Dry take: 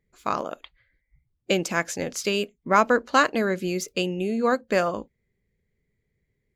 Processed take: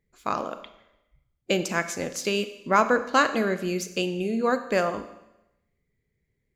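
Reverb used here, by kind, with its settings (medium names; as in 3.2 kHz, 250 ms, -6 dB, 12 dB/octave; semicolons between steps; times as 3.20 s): Schroeder reverb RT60 0.9 s, combs from 28 ms, DRR 10.5 dB; trim -1.5 dB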